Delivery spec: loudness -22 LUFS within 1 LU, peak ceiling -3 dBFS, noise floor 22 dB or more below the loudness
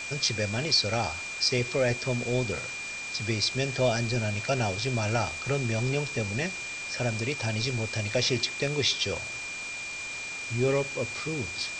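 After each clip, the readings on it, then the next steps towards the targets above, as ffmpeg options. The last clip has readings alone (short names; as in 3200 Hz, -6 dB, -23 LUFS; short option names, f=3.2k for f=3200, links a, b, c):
steady tone 2400 Hz; tone level -35 dBFS; noise floor -37 dBFS; noise floor target -51 dBFS; loudness -28.5 LUFS; peak -11.5 dBFS; loudness target -22.0 LUFS
-> -af "bandreject=f=2.4k:w=30"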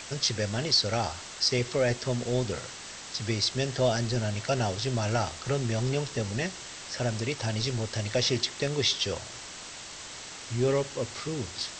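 steady tone none; noise floor -43 dBFS; noise floor target -51 dBFS
-> -af "afftdn=nr=8:nf=-43"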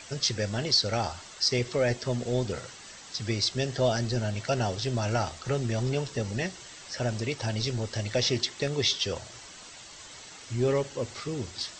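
noise floor -47 dBFS; noise floor target -51 dBFS
-> -af "afftdn=nr=6:nf=-47"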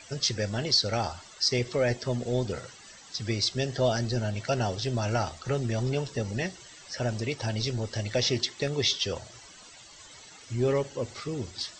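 noise floor -50 dBFS; noise floor target -51 dBFS
-> -af "afftdn=nr=6:nf=-50"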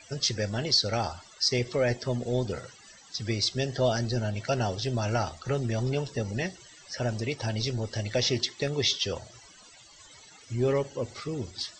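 noise floor -53 dBFS; loudness -29.0 LUFS; peak -12.0 dBFS; loudness target -22.0 LUFS
-> -af "volume=7dB"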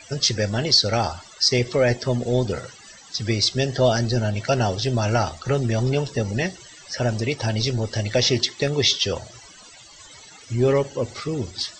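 loudness -22.0 LUFS; peak -5.0 dBFS; noise floor -46 dBFS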